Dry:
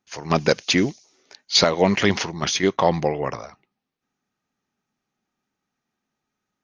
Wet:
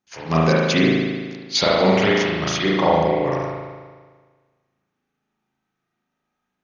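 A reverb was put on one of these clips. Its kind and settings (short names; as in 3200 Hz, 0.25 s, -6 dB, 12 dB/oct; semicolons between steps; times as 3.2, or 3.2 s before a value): spring tank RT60 1.5 s, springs 37 ms, chirp 40 ms, DRR -6 dB; gain -4 dB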